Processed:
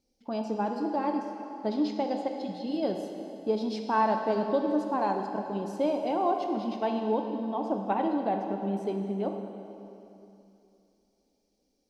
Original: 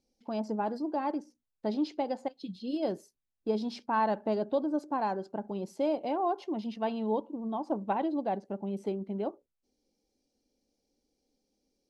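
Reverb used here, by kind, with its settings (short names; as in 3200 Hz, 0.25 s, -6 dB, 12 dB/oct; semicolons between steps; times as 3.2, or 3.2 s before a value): plate-style reverb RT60 2.9 s, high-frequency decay 0.9×, DRR 3.5 dB; gain +1.5 dB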